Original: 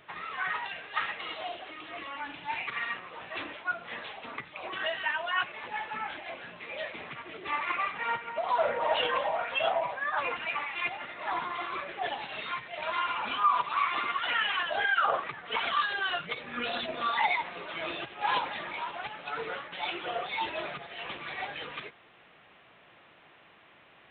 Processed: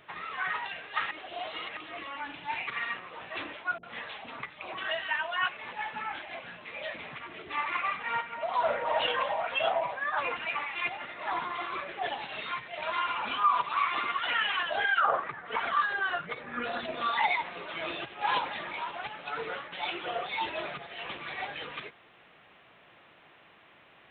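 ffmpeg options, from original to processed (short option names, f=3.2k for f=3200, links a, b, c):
-filter_complex "[0:a]asettb=1/sr,asplit=3[a][b][c];[a]atrim=end=3.784[d];[b]atrim=start=3.78:end=9.47,asetpts=PTS-STARTPTS,afade=t=in:d=0.004:c=qsin,afade=t=out:st=5.686:d=0.004:c=qsin,acrossover=split=410[e][f];[f]adelay=50[g];[e][g]amix=inputs=2:normalize=0,atrim=end_sample=250929[h];[c]atrim=start=9.466[i];[d][h]acrossfade=d=0.004:c1=hsin:c2=qsin[j];[j][i]acrossfade=d=0.004:c1=qsin:c2=hsin,asettb=1/sr,asplit=3[k][l][m];[k]atrim=end=15.004[n];[l]atrim=start=15:end=16.85,asetpts=PTS-STARTPTS,afade=t=in:d=0.004:c=qsin,afade=t=out:st=1.846:d=0.004:c=qsin,highshelf=f=2.2k:t=q:w=1.5:g=-6.5[o];[m]atrim=start=16.846[p];[n][o]acrossfade=d=0.004:c1=hsin:c2=qsin[q];[q][p]acrossfade=d=0.004:c1=qsin:c2=hsin,asplit=3[r][s][t];[r]atrim=end=1.112[u];[s]atrim=start=1.108:end=1.772,asetpts=PTS-STARTPTS,areverse[v];[t]atrim=start=1.768[w];[u][v]acrossfade=d=0.004:c1=hsin:c2=hsin[x];[x][w]acrossfade=d=0.004:c1=hsin:c2=hsin"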